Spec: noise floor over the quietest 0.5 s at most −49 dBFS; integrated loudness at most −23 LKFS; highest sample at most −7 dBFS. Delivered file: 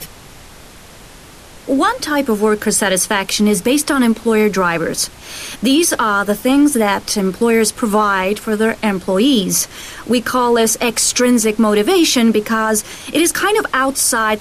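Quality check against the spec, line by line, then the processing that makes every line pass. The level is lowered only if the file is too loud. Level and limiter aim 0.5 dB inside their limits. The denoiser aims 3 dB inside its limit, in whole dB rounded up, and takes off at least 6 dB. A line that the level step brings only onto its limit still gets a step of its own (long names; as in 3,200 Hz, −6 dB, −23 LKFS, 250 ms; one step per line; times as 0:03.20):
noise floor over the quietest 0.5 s −39 dBFS: out of spec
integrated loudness −14.5 LKFS: out of spec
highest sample −4.5 dBFS: out of spec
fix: broadband denoise 6 dB, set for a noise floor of −39 dBFS
level −9 dB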